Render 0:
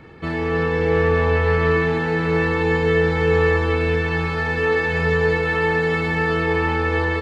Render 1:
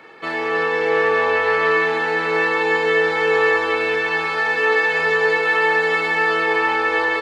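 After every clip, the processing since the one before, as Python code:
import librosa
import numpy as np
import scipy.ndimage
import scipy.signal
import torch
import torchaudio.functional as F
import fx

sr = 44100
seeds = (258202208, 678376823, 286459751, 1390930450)

y = scipy.signal.sosfilt(scipy.signal.butter(2, 540.0, 'highpass', fs=sr, output='sos'), x)
y = F.gain(torch.from_numpy(y), 5.0).numpy()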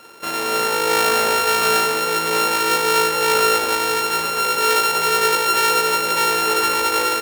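y = np.r_[np.sort(x[:len(x) // 32 * 32].reshape(-1, 32), axis=1).ravel(), x[len(x) // 32 * 32:]]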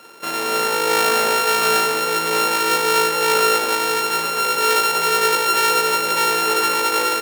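y = scipy.signal.sosfilt(scipy.signal.butter(2, 120.0, 'highpass', fs=sr, output='sos'), x)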